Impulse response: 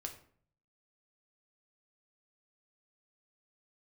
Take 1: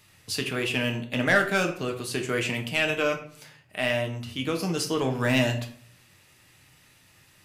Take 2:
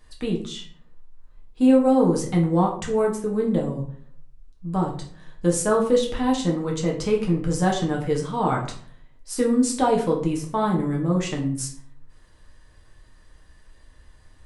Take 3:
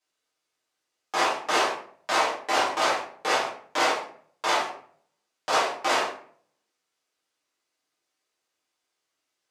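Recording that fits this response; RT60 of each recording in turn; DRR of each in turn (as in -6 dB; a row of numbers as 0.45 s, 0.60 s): 1; 0.55 s, 0.55 s, 0.55 s; 3.0 dB, -1.0 dB, -8.5 dB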